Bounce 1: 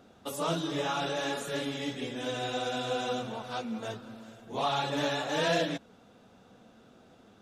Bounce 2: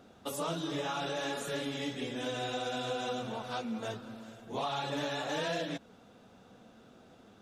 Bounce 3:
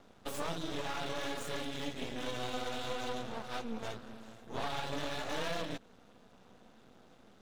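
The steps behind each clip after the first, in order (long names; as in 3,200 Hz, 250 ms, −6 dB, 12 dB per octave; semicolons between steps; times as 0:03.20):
downward compressor 4 to 1, threshold −32 dBFS, peak gain reduction 7.5 dB
stylus tracing distortion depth 0.052 ms; half-wave rectification; level +1 dB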